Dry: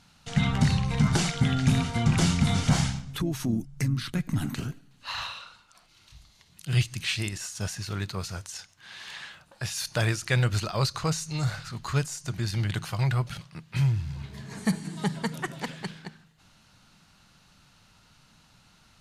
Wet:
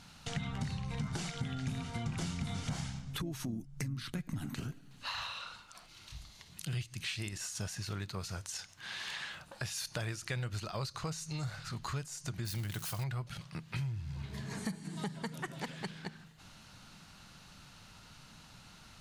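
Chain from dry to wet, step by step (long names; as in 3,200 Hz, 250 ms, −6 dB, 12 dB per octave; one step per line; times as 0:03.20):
0:12.45–0:13.04: spike at every zero crossing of −26 dBFS
downward compressor 4 to 1, threshold −42 dBFS, peak gain reduction 20.5 dB
level +3.5 dB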